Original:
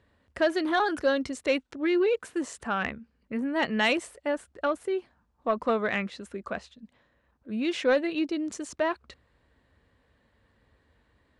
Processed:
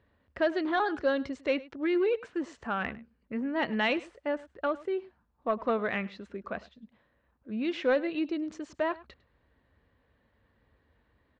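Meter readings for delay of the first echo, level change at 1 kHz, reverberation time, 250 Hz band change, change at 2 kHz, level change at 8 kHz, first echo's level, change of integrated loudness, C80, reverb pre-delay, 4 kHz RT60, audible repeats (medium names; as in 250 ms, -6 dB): 103 ms, -2.5 dB, no reverb, -2.5 dB, -3.5 dB, under -15 dB, -20.0 dB, -3.0 dB, no reverb, no reverb, no reverb, 1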